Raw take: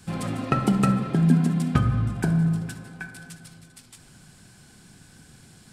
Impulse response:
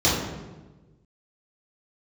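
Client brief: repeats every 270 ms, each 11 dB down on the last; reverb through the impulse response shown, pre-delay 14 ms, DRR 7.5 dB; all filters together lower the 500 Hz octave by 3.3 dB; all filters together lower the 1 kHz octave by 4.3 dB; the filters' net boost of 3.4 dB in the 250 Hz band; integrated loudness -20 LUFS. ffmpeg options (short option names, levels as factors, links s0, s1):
-filter_complex "[0:a]equalizer=f=250:t=o:g=6.5,equalizer=f=500:t=o:g=-6.5,equalizer=f=1000:t=o:g=-5.5,aecho=1:1:270|540|810:0.282|0.0789|0.0221,asplit=2[s0][s1];[1:a]atrim=start_sample=2205,adelay=14[s2];[s1][s2]afir=irnorm=-1:irlink=0,volume=0.0531[s3];[s0][s3]amix=inputs=2:normalize=0,volume=0.75"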